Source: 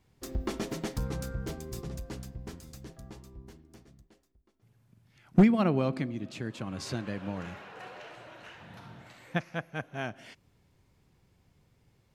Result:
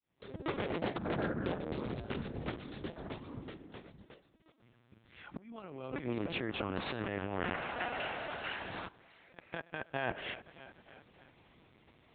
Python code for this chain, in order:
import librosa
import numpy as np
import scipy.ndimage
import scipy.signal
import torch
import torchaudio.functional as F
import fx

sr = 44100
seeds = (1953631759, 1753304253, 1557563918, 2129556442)

y = fx.fade_in_head(x, sr, length_s=1.03)
y = fx.echo_feedback(y, sr, ms=303, feedback_pct=59, wet_db=-22.5)
y = fx.lpc_vocoder(y, sr, seeds[0], excitation='pitch_kept', order=10)
y = fx.ring_mod(y, sr, carrier_hz=fx.line((0.78, 170.0), (2.13, 52.0)), at=(0.78, 2.13), fade=0.02)
y = fx.over_compress(y, sr, threshold_db=-38.0, ratio=-1.0)
y = fx.highpass(y, sr, hz=280.0, slope=6)
y = fx.high_shelf(y, sr, hz=3100.0, db=3.5)
y = fx.level_steps(y, sr, step_db=22, at=(8.87, 9.93), fade=0.02)
y = fx.env_lowpass_down(y, sr, base_hz=2800.0, full_db=-36.0)
y = fx.doppler_dist(y, sr, depth_ms=0.14)
y = y * librosa.db_to_amplitude(4.0)